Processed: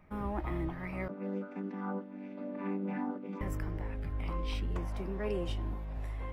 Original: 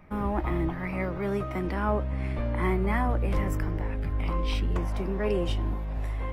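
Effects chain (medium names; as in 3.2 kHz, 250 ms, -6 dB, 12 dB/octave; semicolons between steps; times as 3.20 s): 1.08–3.41 s: vocoder on a held chord major triad, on G3; trim -7.5 dB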